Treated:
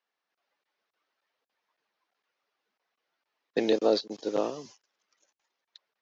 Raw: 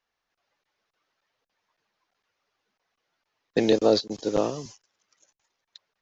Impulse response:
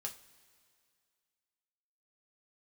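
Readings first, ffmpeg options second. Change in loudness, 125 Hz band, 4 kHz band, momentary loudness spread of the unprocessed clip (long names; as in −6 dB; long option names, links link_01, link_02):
−4.0 dB, −12.5 dB, −5.0 dB, 9 LU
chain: -af "highpass=240,lowpass=5500,volume=-3.5dB"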